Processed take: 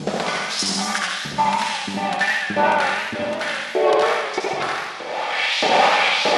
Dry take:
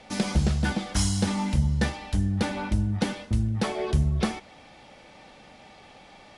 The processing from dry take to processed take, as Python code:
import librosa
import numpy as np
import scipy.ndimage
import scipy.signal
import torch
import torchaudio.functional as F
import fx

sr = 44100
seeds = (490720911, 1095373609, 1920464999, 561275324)

p1 = fx.block_reorder(x, sr, ms=197.0, group=3)
p2 = fx.recorder_agc(p1, sr, target_db=-16.0, rise_db_per_s=30.0, max_gain_db=30)
p3 = fx.high_shelf(p2, sr, hz=6100.0, db=-11.5)
p4 = fx.filter_lfo_highpass(p3, sr, shape='saw_up', hz=1.6, low_hz=380.0, high_hz=5600.0, q=2.3)
p5 = fx.peak_eq(p4, sr, hz=170.0, db=9.0, octaves=0.74)
p6 = fx.volume_shaper(p5, sr, bpm=143, per_beat=2, depth_db=-10, release_ms=64.0, shape='slow start')
p7 = p5 + (p6 * librosa.db_to_amplitude(0.0))
p8 = fx.room_flutter(p7, sr, wall_m=11.3, rt60_s=1.2)
y = fx.echo_warbled(p8, sr, ms=87, feedback_pct=43, rate_hz=2.8, cents=134, wet_db=-4)